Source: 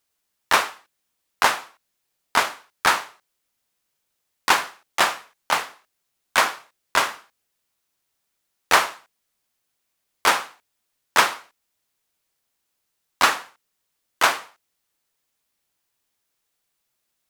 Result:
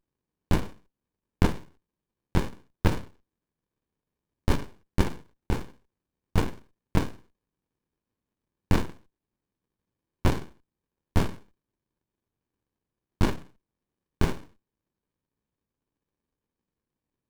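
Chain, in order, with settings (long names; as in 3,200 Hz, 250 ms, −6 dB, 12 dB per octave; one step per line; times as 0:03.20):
windowed peak hold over 65 samples
level −3.5 dB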